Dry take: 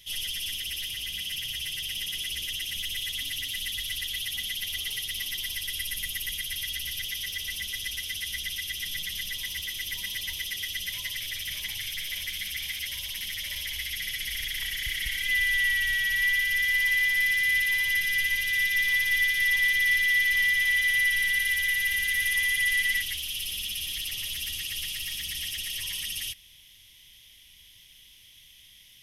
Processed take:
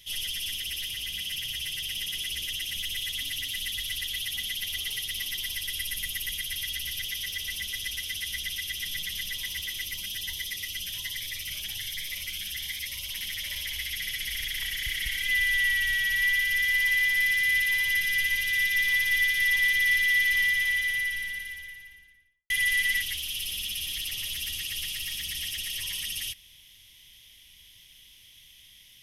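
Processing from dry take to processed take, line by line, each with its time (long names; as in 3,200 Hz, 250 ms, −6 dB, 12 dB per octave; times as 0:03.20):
0:09.86–0:13.10: phaser whose notches keep moving one way rising 1.3 Hz
0:20.29–0:22.50: fade out and dull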